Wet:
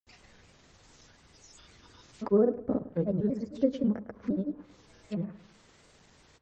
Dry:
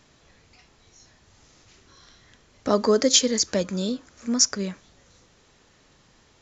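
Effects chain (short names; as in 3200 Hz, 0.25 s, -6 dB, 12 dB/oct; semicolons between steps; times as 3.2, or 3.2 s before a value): slices in reverse order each 0.253 s, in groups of 3; dynamic EQ 620 Hz, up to -3 dB, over -31 dBFS, Q 0.83; grains, pitch spread up and down by 3 st; treble ducked by the level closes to 590 Hz, closed at -29.5 dBFS; dark delay 0.106 s, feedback 32%, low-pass 2400 Hz, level -15.5 dB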